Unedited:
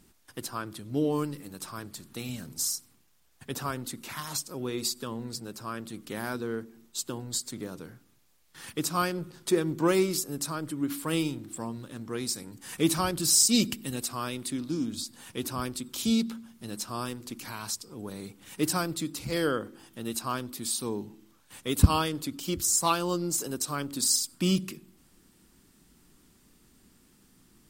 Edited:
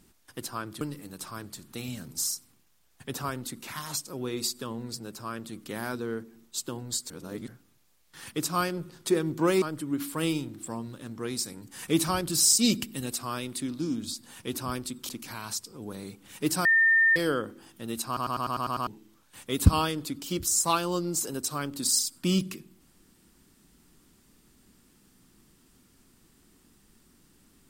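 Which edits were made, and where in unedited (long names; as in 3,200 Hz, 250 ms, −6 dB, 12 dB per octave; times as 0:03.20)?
0:00.81–0:01.22: remove
0:07.51–0:07.89: reverse
0:10.03–0:10.52: remove
0:15.99–0:17.26: remove
0:18.82–0:19.33: beep over 1,810 Hz −17.5 dBFS
0:20.24: stutter in place 0.10 s, 8 plays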